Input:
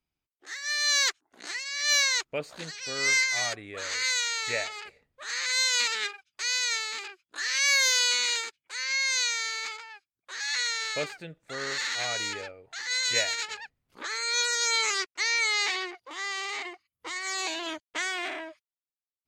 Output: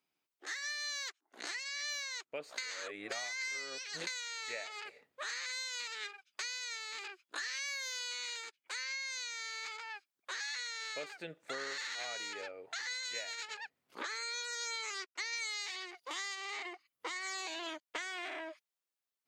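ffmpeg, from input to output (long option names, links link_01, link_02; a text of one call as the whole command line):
ffmpeg -i in.wav -filter_complex "[0:a]asplit=3[link_01][link_02][link_03];[link_01]afade=type=out:start_time=15.32:duration=0.02[link_04];[link_02]highshelf=frequency=3400:gain=11.5,afade=type=in:start_time=15.32:duration=0.02,afade=type=out:start_time=16.34:duration=0.02[link_05];[link_03]afade=type=in:start_time=16.34:duration=0.02[link_06];[link_04][link_05][link_06]amix=inputs=3:normalize=0,asplit=3[link_07][link_08][link_09];[link_07]atrim=end=2.582[link_10];[link_08]atrim=start=2.578:end=4.072,asetpts=PTS-STARTPTS,areverse[link_11];[link_09]atrim=start=4.068[link_12];[link_10][link_11]acrossfade=duration=0.004:curve1=hsin:curve2=hsin[link_13];[link_13][link_12]acrossfade=duration=0.004:curve1=hsin:curve2=hsin,highpass=290,equalizer=frequency=11000:width=0.43:gain=-2.5,acompressor=threshold=-42dB:ratio=8,volume=4dB" out.wav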